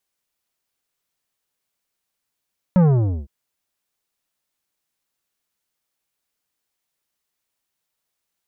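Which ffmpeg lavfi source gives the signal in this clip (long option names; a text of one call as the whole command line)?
ffmpeg -f lavfi -i "aevalsrc='0.266*clip((0.51-t)/0.48,0,1)*tanh(3.76*sin(2*PI*190*0.51/log(65/190)*(exp(log(65/190)*t/0.51)-1)))/tanh(3.76)':duration=0.51:sample_rate=44100" out.wav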